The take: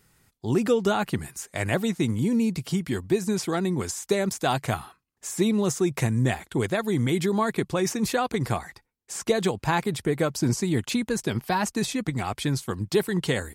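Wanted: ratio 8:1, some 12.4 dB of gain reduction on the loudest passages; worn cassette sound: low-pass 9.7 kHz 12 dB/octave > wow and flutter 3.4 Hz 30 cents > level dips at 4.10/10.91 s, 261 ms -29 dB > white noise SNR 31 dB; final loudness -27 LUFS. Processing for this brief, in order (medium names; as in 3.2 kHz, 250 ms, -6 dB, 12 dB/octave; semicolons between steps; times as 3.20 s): compression 8:1, threshold -30 dBFS; low-pass 9.7 kHz 12 dB/octave; wow and flutter 3.4 Hz 30 cents; level dips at 4.10/10.91 s, 261 ms -29 dB; white noise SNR 31 dB; trim +8 dB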